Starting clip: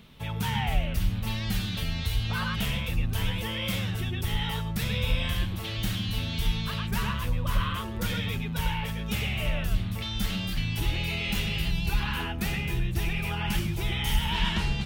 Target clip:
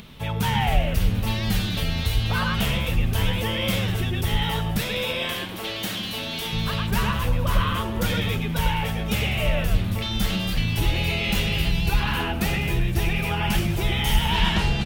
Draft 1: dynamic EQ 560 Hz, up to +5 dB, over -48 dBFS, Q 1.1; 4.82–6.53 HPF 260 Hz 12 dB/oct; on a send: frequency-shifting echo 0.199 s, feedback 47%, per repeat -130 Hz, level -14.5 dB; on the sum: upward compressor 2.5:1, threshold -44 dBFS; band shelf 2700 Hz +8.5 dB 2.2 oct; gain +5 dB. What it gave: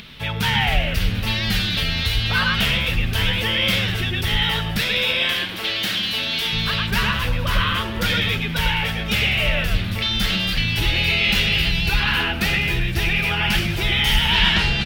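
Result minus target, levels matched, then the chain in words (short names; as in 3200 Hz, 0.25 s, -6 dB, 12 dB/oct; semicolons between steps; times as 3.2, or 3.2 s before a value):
2000 Hz band +3.5 dB
dynamic EQ 560 Hz, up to +5 dB, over -48 dBFS, Q 1.1; 4.82–6.53 HPF 260 Hz 12 dB/oct; on a send: frequency-shifting echo 0.199 s, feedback 47%, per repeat -130 Hz, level -14.5 dB; on the sum: upward compressor 2.5:1, threshold -44 dBFS; gain +5 dB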